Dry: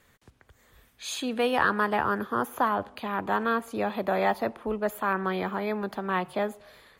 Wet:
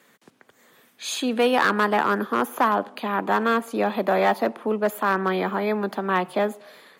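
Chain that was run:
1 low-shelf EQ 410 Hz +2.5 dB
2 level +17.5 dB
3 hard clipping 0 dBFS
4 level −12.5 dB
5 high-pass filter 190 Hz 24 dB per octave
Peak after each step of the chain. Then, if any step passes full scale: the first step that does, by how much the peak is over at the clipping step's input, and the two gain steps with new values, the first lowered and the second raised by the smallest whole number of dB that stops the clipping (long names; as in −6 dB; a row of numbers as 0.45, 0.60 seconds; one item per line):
−9.0, +8.5, 0.0, −12.5, −8.0 dBFS
step 2, 8.5 dB
step 2 +8.5 dB, step 4 −3.5 dB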